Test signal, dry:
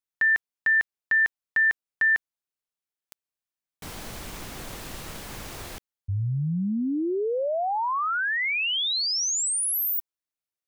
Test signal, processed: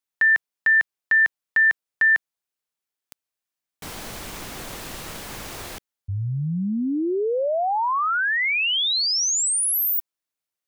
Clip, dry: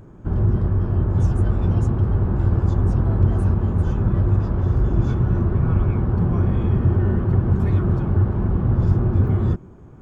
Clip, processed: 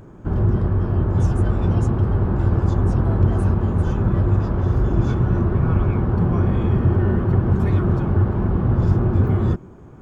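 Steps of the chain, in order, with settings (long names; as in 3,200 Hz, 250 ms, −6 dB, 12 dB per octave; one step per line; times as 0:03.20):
low-shelf EQ 180 Hz −5 dB
level +4 dB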